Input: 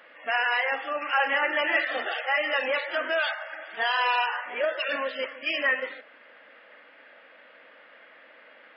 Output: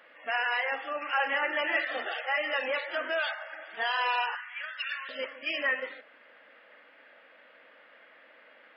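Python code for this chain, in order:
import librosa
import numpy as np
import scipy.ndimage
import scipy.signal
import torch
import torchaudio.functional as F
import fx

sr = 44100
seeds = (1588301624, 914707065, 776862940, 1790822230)

y = fx.highpass(x, sr, hz=1300.0, slope=24, at=(4.35, 5.09))
y = F.gain(torch.from_numpy(y), -4.0).numpy()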